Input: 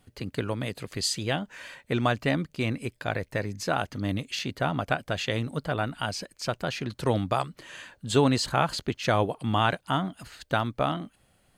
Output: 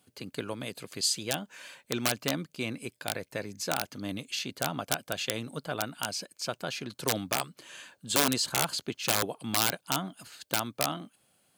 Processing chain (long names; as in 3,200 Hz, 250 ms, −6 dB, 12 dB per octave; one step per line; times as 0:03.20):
wrap-around overflow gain 14.5 dB
high-pass filter 160 Hz 12 dB per octave
high-shelf EQ 4,100 Hz +8.5 dB
notch filter 1,900 Hz, Q 11
level −5 dB